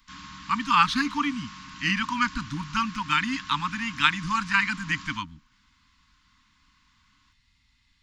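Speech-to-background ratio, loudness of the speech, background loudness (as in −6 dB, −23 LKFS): 17.0 dB, −25.5 LKFS, −42.5 LKFS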